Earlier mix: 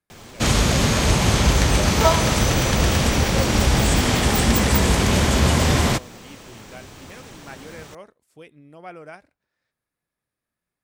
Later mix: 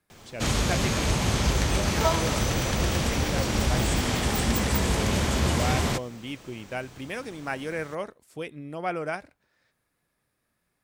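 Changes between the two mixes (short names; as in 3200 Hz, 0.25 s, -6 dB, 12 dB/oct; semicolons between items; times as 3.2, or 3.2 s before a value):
speech +9.0 dB; background -7.0 dB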